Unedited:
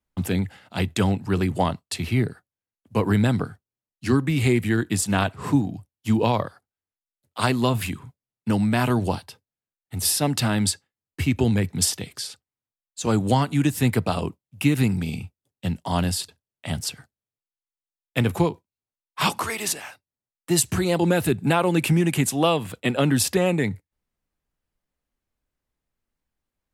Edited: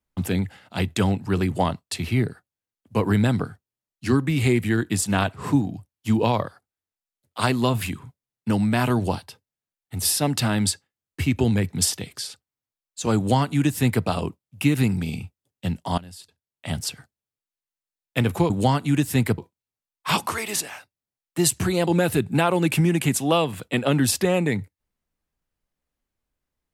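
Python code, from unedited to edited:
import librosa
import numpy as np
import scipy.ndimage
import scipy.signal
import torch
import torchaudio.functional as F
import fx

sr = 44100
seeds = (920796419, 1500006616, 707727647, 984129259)

y = fx.edit(x, sr, fx.duplicate(start_s=13.17, length_s=0.88, to_s=18.5),
    fx.fade_in_from(start_s=15.98, length_s=0.71, curve='qua', floor_db=-20.0), tone=tone)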